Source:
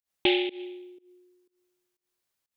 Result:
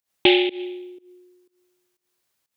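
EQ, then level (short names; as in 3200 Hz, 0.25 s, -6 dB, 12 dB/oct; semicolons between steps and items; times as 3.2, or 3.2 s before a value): HPF 61 Hz; +7.5 dB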